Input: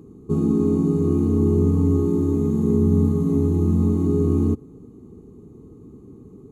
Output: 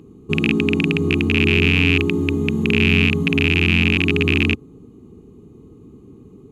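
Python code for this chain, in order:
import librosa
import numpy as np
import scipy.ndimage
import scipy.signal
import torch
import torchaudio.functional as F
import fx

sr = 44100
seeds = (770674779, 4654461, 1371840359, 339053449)

y = fx.rattle_buzz(x, sr, strikes_db=-17.0, level_db=-14.0)
y = fx.peak_eq(y, sr, hz=2800.0, db=12.5, octaves=1.0)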